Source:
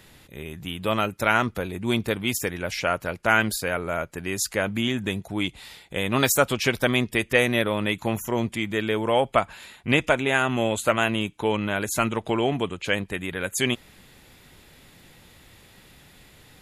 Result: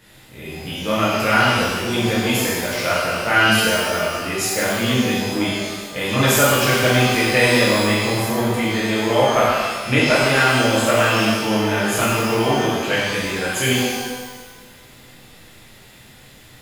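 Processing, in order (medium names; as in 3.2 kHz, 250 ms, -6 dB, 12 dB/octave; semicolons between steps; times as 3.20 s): pitch-shifted reverb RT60 1.4 s, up +12 st, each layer -8 dB, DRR -9 dB; trim -3.5 dB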